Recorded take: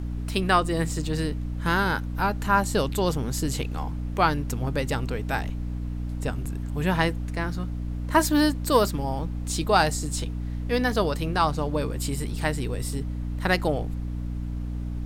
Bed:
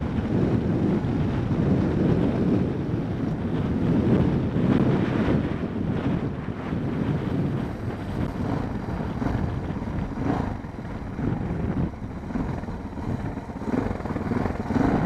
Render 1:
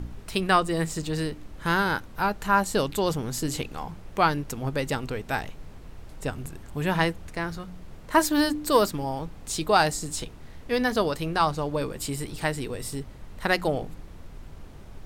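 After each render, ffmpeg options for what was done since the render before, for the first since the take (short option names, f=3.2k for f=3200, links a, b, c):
-af "bandreject=f=60:t=h:w=4,bandreject=f=120:t=h:w=4,bandreject=f=180:t=h:w=4,bandreject=f=240:t=h:w=4,bandreject=f=300:t=h:w=4"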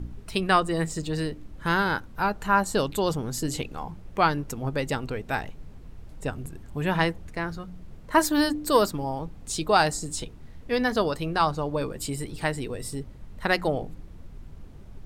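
-af "afftdn=nr=7:nf=-44"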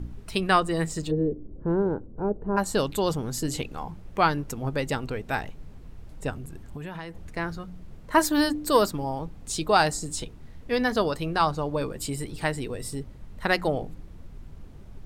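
-filter_complex "[0:a]asplit=3[a][b][c];[a]afade=t=out:st=1.1:d=0.02[d];[b]lowpass=f=430:t=q:w=2.5,afade=t=in:st=1.1:d=0.02,afade=t=out:st=2.56:d=0.02[e];[c]afade=t=in:st=2.56:d=0.02[f];[d][e][f]amix=inputs=3:normalize=0,asettb=1/sr,asplit=3[g][h][i];[g]atrim=end=6.344[j];[h]atrim=start=6.34:end=7.23,asetpts=PTS-STARTPTS,afade=t=in:d=0.004:c=qsin,afade=t=out:st=0.886:d=0.004:c=qsin,acompressor=threshold=-32dB:ratio=16:attack=3.2:release=140:knee=1:detection=peak[k];[i]atrim=start=7.226[l];[j][k]acrossfade=d=0.004:c1=hsin:c2=qsin[m];[m][l]acrossfade=d=0.004:c1=qsin:c2=hsin"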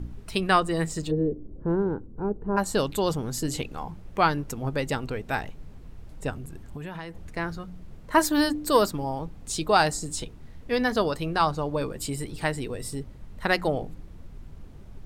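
-filter_complex "[0:a]asettb=1/sr,asplit=3[a][b][c];[a]atrim=end=1.754[d];[b]atrim=start=1.75:end=2.48,asetpts=PTS-STARTPTS,afade=t=in:d=0.004:c=qsin,afade=t=out:st=0.726:d=0.004:c=qsin,equalizer=f=610:w=2.6:g=-8[e];[c]atrim=start=2.476[f];[d][e]acrossfade=d=0.004:c1=hsin:c2=qsin[g];[g][f]acrossfade=d=0.004:c1=qsin:c2=hsin"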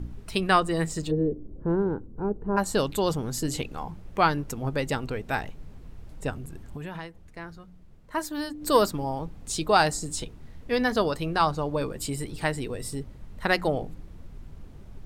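-filter_complex "[0:a]asplit=3[a][b][c];[a]atrim=end=7.3,asetpts=PTS-STARTPTS,afade=t=out:st=7.06:d=0.24:c=exp:silence=0.334965[d];[b]atrim=start=7.3:end=8.39,asetpts=PTS-STARTPTS,volume=-9.5dB[e];[c]atrim=start=8.39,asetpts=PTS-STARTPTS,afade=t=in:d=0.24:c=exp:silence=0.334965[f];[d][e][f]concat=n=3:v=0:a=1"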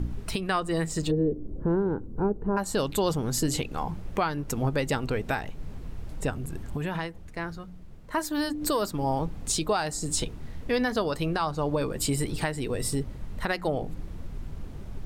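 -filter_complex "[0:a]asplit=2[a][b];[b]acompressor=threshold=-31dB:ratio=6,volume=0.5dB[c];[a][c]amix=inputs=2:normalize=0,alimiter=limit=-16dB:level=0:latency=1:release=352"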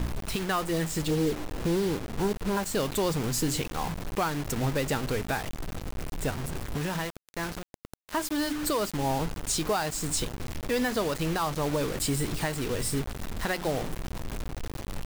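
-af "asoftclip=type=tanh:threshold=-18.5dB,acrusher=bits=5:mix=0:aa=0.000001"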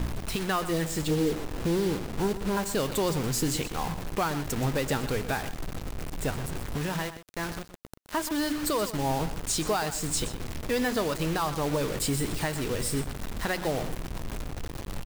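-af "aecho=1:1:124:0.224"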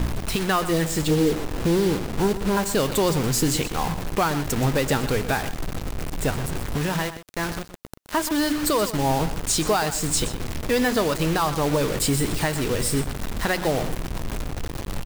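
-af "volume=6dB"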